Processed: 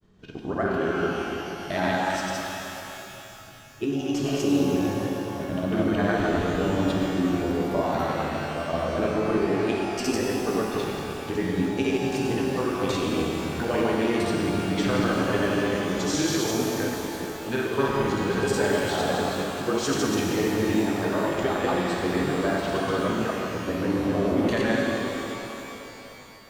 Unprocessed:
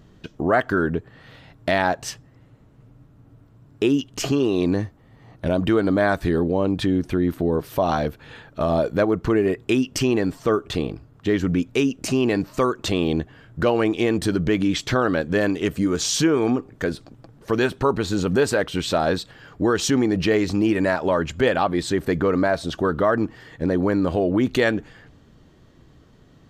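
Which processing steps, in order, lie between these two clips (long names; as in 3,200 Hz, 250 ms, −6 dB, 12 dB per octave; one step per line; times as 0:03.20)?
delay that plays each chunk backwards 148 ms, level −1.5 dB
granular cloud, pitch spread up and down by 0 semitones
reverb with rising layers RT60 3.3 s, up +12 semitones, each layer −8 dB, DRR −1 dB
level −8 dB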